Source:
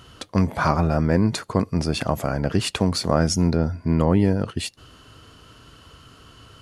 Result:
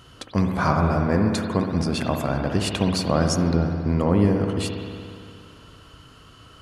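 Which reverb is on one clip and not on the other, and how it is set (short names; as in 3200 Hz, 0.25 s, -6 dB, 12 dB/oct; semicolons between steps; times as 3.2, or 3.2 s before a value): spring tank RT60 2.4 s, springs 59 ms, chirp 40 ms, DRR 3 dB; gain -2 dB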